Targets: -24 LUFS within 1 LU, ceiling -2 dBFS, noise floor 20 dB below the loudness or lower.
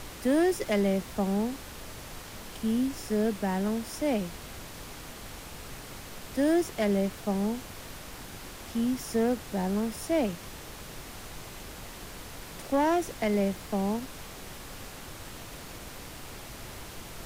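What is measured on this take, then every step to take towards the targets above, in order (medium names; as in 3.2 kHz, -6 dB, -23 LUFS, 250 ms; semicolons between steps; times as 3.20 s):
clipped samples 0.4%; clipping level -19.0 dBFS; noise floor -44 dBFS; noise floor target -49 dBFS; loudness -29.0 LUFS; peak level -19.0 dBFS; loudness target -24.0 LUFS
-> clip repair -19 dBFS; noise print and reduce 6 dB; trim +5 dB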